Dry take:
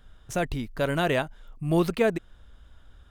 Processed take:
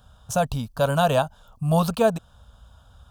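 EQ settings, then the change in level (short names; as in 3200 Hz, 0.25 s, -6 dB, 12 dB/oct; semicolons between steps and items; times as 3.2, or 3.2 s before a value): HPF 66 Hz 12 dB/oct; fixed phaser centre 840 Hz, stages 4; +8.5 dB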